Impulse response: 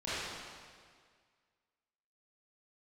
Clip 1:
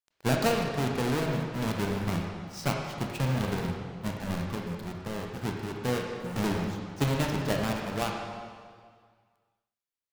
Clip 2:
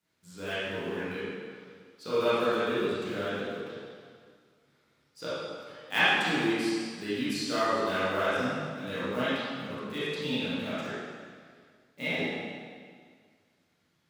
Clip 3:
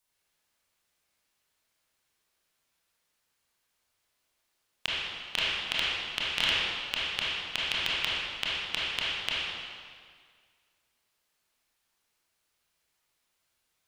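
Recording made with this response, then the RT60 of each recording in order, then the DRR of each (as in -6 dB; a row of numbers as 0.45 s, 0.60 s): 2; 1.9 s, 1.9 s, 1.9 s; 0.5 dB, -13.0 dB, -8.0 dB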